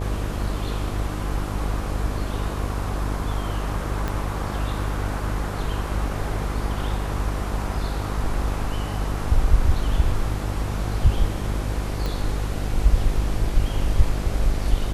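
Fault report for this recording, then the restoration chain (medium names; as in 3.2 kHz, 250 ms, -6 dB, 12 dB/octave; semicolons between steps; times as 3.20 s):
buzz 50 Hz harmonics 17 -27 dBFS
4.08 s: pop -13 dBFS
12.06 s: pop -14 dBFS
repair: de-click; de-hum 50 Hz, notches 17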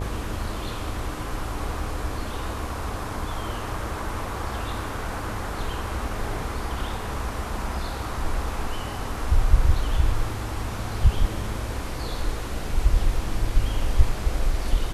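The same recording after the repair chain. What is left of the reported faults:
4.08 s: pop
12.06 s: pop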